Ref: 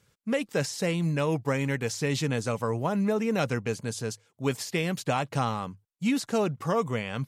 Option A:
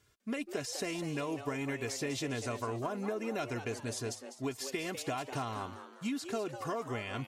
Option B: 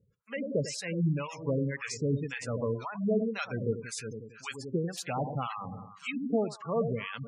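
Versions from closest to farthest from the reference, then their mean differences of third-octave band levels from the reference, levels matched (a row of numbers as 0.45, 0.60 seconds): A, B; 5.5, 14.0 decibels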